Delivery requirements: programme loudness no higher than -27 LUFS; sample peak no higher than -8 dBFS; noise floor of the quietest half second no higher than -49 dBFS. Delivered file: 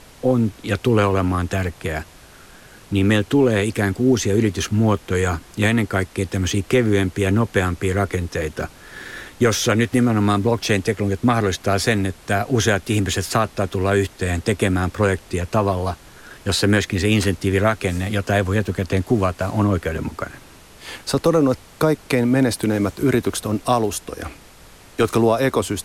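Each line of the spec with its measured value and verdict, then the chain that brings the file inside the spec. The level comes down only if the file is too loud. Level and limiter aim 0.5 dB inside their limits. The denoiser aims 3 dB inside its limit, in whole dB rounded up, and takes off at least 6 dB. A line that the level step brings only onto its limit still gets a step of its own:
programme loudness -20.0 LUFS: fail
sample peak -6.0 dBFS: fail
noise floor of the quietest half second -45 dBFS: fail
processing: gain -7.5 dB

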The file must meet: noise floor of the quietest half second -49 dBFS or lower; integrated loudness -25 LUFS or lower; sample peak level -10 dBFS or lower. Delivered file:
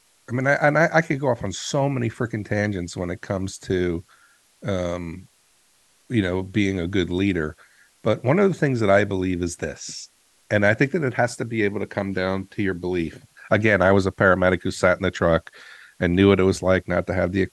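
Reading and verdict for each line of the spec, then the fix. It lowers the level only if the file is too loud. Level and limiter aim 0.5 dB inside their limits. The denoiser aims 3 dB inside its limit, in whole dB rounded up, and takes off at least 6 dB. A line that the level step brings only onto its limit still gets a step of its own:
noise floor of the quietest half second -61 dBFS: OK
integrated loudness -22.0 LUFS: fail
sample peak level -4.0 dBFS: fail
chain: gain -3.5 dB; limiter -10.5 dBFS

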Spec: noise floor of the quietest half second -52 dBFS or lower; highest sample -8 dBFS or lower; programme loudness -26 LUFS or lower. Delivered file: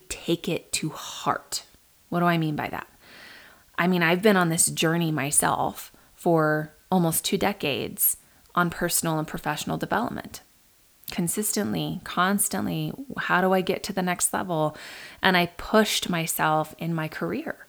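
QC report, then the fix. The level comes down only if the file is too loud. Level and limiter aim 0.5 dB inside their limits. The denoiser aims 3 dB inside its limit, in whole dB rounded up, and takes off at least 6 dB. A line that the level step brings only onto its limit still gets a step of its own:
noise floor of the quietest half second -59 dBFS: OK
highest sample -3.0 dBFS: fail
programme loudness -25.0 LUFS: fail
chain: gain -1.5 dB; limiter -8.5 dBFS

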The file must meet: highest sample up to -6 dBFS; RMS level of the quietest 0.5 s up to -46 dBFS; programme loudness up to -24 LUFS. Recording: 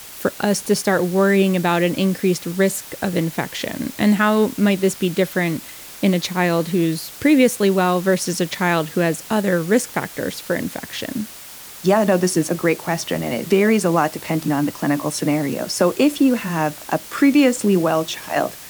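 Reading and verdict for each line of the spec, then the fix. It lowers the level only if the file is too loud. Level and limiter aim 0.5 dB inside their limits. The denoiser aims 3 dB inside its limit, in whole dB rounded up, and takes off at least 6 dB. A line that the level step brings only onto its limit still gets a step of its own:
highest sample -4.5 dBFS: fail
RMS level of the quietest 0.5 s -38 dBFS: fail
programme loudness -19.5 LUFS: fail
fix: denoiser 6 dB, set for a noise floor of -38 dBFS; gain -5 dB

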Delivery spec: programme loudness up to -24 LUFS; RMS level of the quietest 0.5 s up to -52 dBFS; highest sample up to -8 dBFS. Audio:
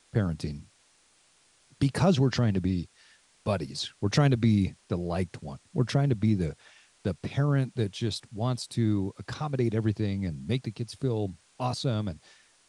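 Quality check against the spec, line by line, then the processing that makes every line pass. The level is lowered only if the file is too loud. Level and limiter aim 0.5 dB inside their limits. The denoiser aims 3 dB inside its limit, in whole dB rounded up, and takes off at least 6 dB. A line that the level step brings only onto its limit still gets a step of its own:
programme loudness -29.0 LUFS: OK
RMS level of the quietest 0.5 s -64 dBFS: OK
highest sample -9.5 dBFS: OK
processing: none

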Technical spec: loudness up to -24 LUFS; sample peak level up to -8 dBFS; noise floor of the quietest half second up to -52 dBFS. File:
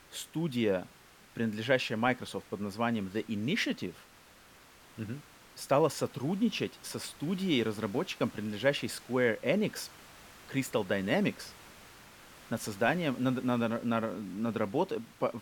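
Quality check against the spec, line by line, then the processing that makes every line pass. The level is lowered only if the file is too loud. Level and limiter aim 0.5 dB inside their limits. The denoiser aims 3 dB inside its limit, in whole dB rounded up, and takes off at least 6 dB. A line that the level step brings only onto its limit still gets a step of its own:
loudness -32.5 LUFS: OK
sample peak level -13.0 dBFS: OK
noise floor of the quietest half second -57 dBFS: OK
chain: none

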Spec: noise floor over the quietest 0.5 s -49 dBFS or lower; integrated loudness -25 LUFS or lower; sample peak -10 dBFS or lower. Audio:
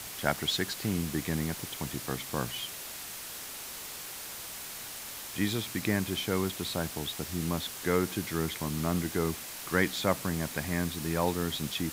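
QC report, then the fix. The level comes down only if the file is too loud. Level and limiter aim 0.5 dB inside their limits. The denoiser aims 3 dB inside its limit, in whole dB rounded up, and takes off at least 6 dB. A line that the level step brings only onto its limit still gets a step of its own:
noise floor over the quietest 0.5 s -42 dBFS: fail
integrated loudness -32.5 LUFS: OK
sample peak -9.5 dBFS: fail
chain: denoiser 10 dB, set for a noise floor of -42 dBFS; limiter -10.5 dBFS

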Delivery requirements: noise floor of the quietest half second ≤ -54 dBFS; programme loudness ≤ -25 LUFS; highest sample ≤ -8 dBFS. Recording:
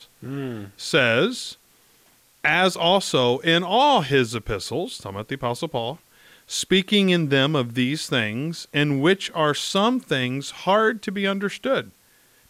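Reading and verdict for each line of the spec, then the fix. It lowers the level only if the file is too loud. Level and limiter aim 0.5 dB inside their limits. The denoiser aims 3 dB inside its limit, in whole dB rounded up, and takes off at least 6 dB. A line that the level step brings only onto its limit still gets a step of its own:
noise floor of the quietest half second -58 dBFS: OK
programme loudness -21.5 LUFS: fail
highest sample -6.5 dBFS: fail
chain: gain -4 dB

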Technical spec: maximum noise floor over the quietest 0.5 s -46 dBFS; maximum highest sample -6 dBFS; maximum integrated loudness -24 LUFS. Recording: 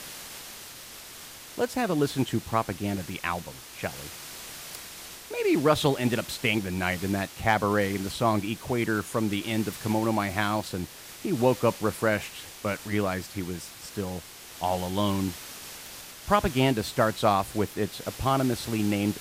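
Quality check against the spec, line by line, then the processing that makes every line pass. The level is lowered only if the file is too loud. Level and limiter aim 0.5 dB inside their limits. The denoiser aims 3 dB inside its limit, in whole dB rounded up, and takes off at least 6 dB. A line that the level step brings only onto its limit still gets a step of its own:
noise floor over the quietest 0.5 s -44 dBFS: fail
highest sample -9.0 dBFS: OK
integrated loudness -27.5 LUFS: OK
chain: denoiser 6 dB, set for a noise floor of -44 dBFS

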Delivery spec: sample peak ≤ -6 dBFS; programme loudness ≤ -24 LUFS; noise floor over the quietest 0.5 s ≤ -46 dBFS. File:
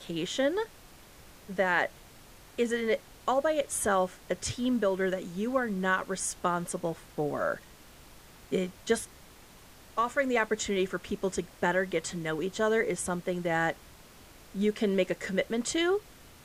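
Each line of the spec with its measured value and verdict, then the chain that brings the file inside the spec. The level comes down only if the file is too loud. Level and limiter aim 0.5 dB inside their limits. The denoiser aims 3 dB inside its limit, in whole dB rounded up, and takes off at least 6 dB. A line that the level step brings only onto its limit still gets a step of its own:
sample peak -12.5 dBFS: OK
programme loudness -30.5 LUFS: OK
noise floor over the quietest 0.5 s -53 dBFS: OK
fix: none

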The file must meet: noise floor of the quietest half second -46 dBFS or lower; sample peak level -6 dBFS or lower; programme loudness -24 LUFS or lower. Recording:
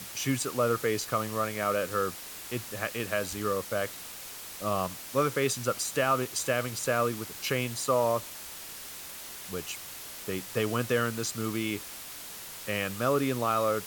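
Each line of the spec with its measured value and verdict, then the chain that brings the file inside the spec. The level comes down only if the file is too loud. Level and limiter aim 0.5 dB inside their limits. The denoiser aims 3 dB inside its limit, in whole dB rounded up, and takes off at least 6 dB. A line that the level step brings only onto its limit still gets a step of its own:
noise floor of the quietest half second -43 dBFS: fail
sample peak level -13.5 dBFS: OK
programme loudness -30.5 LUFS: OK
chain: denoiser 6 dB, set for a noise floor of -43 dBFS

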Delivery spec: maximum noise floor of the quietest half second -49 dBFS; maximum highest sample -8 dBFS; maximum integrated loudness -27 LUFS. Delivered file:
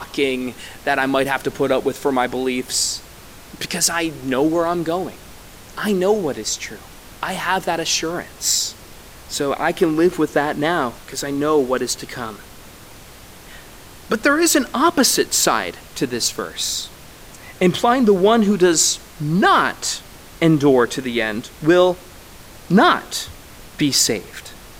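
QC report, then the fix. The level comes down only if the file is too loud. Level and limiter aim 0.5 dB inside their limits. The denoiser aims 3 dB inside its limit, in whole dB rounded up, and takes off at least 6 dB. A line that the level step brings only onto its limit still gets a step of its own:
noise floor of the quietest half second -41 dBFS: fail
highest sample -4.0 dBFS: fail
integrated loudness -18.5 LUFS: fail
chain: gain -9 dB

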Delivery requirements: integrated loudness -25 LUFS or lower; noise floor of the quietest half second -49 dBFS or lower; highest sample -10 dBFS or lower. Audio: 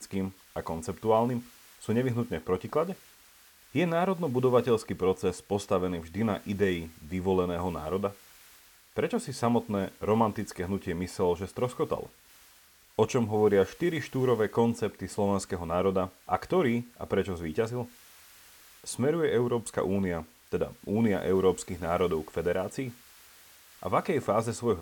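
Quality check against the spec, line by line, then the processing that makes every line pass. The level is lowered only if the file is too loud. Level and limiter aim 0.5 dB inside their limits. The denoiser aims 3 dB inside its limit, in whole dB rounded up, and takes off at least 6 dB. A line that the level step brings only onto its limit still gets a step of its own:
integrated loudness -29.5 LUFS: OK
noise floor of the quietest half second -59 dBFS: OK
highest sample -11.0 dBFS: OK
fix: none

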